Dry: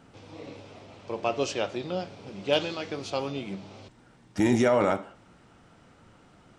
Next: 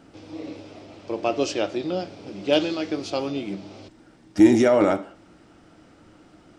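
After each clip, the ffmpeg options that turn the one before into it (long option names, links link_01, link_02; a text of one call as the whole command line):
ffmpeg -i in.wav -af "equalizer=frequency=125:width_type=o:width=0.33:gain=-4,equalizer=frequency=315:width_type=o:width=0.33:gain=11,equalizer=frequency=630:width_type=o:width=0.33:gain=3,equalizer=frequency=1000:width_type=o:width=0.33:gain=-3,equalizer=frequency=5000:width_type=o:width=0.33:gain=4,volume=2dB" out.wav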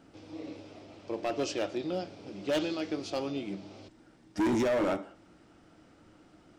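ffmpeg -i in.wav -af "asoftclip=type=hard:threshold=-18dB,volume=-6.5dB" out.wav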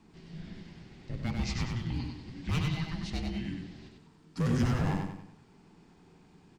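ffmpeg -i in.wav -filter_complex "[0:a]afreqshift=-480,asplit=2[link_01][link_02];[link_02]aecho=0:1:96|192|288|384|480:0.631|0.252|0.101|0.0404|0.0162[link_03];[link_01][link_03]amix=inputs=2:normalize=0,volume=-1.5dB" out.wav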